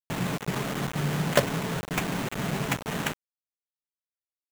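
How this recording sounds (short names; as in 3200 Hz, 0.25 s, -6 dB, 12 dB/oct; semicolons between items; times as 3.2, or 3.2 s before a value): aliases and images of a low sample rate 4900 Hz, jitter 20%; chopped level 2.1 Hz, depth 60%, duty 80%; a quantiser's noise floor 6-bit, dither none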